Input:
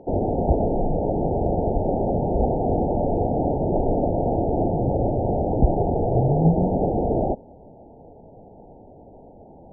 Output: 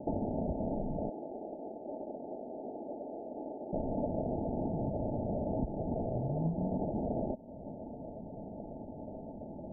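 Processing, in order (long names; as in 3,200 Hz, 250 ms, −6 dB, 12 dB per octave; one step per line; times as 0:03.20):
variable-slope delta modulation 16 kbit/s
downward compressor 6 to 1, threshold −34 dBFS, peak gain reduction 21 dB
0:01.09–0:03.73: four-pole ladder high-pass 280 Hz, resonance 40%
decimation without filtering 38×
Chebyshev low-pass with heavy ripple 900 Hz, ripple 9 dB
level +7 dB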